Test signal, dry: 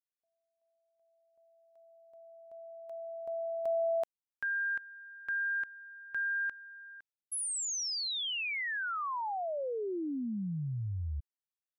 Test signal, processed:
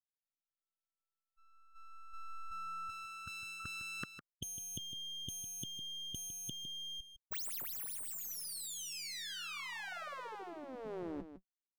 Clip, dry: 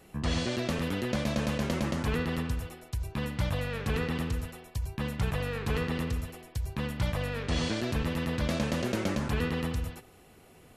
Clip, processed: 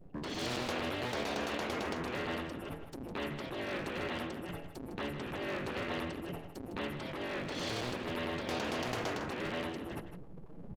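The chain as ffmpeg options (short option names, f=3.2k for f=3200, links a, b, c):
-af "afftdn=nr=36:nf=-47,lowshelf=f=120:t=q:w=3:g=8,aeval=exprs='abs(val(0))':c=same,areverse,acompressor=threshold=-34dB:ratio=4:attack=36:release=467:knee=1:detection=peak,areverse,alimiter=level_in=6dB:limit=-24dB:level=0:latency=1:release=216,volume=-6dB,acontrast=33,afftfilt=real='re*lt(hypot(re,im),0.0631)':imag='im*lt(hypot(re,im),0.0631)':win_size=1024:overlap=0.75,aecho=1:1:156:0.299,volume=5.5dB"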